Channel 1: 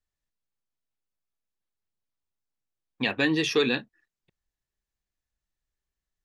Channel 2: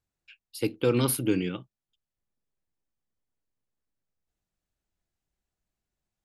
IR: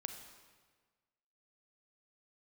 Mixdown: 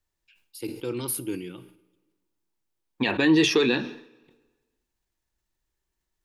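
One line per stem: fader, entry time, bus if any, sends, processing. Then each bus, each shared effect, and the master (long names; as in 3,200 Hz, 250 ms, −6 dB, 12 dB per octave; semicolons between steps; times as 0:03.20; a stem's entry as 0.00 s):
+3.0 dB, 0.00 s, send −11.5 dB, brickwall limiter −18.5 dBFS, peak gain reduction 7 dB
−12.5 dB, 0.00 s, send −10 dB, high-shelf EQ 4,800 Hz +11.5 dB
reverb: on, RT60 1.5 s, pre-delay 32 ms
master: hollow resonant body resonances 350/920 Hz, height 8 dB, ringing for 40 ms; level that may fall only so fast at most 94 dB per second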